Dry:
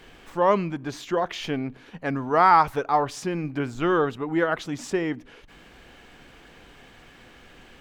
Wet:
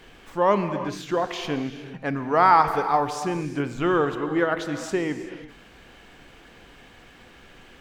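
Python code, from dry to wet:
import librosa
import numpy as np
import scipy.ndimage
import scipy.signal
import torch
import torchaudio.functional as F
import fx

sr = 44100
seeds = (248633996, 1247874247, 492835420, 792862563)

y = fx.rev_gated(x, sr, seeds[0], gate_ms=410, shape='flat', drr_db=8.5)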